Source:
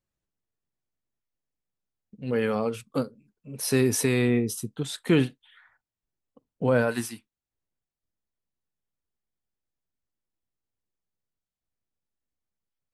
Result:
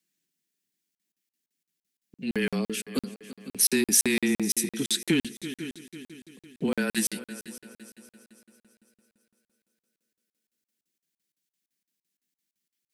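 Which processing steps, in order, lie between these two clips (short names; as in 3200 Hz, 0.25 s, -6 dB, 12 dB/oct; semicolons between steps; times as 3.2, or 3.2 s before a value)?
steep high-pass 180 Hz 48 dB/oct; band shelf 810 Hz -12.5 dB; on a send: multi-head echo 0.166 s, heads second and third, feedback 46%, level -20 dB; on the sum: frequency shift -20 Hz; in parallel at -10 dB: soft clip -28 dBFS, distortion -8 dB; on the sum: compressor 2:1, threshold -28 dBFS, peak gain reduction 6.5 dB; high shelf 2700 Hz +8 dB; crackling interface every 0.17 s, samples 2048, zero, from 0.95; gain +3 dB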